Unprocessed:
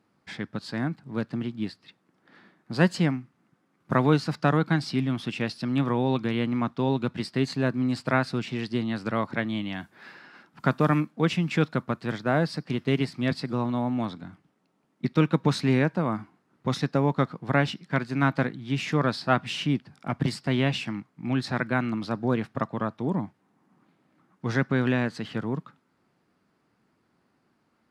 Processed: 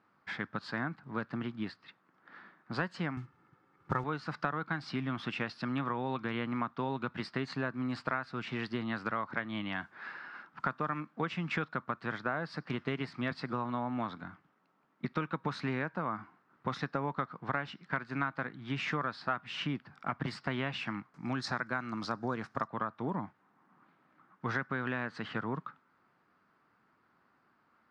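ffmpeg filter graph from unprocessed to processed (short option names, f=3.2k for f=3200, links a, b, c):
-filter_complex "[0:a]asettb=1/sr,asplit=3[a][b][c];[a]atrim=end=3.174[d];[b]atrim=start=3.17:end=4.04,asetpts=PTS-STARTPTS,afade=t=in:d=0.004:c=qsin,afade=t=out:st=0.866:d=0.004:c=qsin,lowshelf=f=250:g=12,aecho=1:1:2.3:0.57,atrim=end_sample=38367,acrusher=bits=7:mode=log:mix=0:aa=0.000001[e];[c]atrim=start=4.036[f];[d][e]acrossfade=d=0.004:c1=hsin:c2=qsin[g];[g][f]acrossfade=d=0.004:c1=qsin:c2=hsin,asettb=1/sr,asplit=3[h][i][j];[h]atrim=end=21.144[k];[i]atrim=start=21.14:end=22.68,asetpts=PTS-STARTPTS,afade=t=in:d=0.004:c=qsin,afade=t=out:st=1.536:d=0.004:c=qsin,highshelf=f=4.2k:t=q:w=1.5:g=10,acompressor=mode=upward:threshold=-47dB:ratio=2.5:attack=3.2:release=140:knee=2.83:detection=peak[l];[j]atrim=start=22.676[m];[k][l]acrossfade=d=0.004:c1=hsin:c2=qsin[n];[n][m]acrossfade=d=0.004:c1=qsin:c2=hsin,lowpass=5.4k,equalizer=f=1.3k:t=o:w=1.5:g=12.5,acompressor=threshold=-24dB:ratio=6,volume=-6.5dB"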